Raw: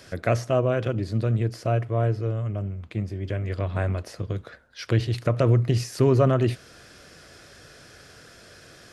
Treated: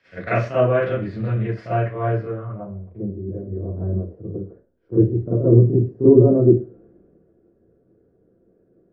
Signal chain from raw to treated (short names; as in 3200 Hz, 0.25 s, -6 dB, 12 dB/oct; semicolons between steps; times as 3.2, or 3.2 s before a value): dynamic EQ 2300 Hz, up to -5 dB, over -50 dBFS, Q 2; low-pass sweep 2100 Hz -> 360 Hz, 2.17–3.11; Schroeder reverb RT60 0.31 s, combs from 33 ms, DRR -10 dB; three-band expander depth 40%; gain -7.5 dB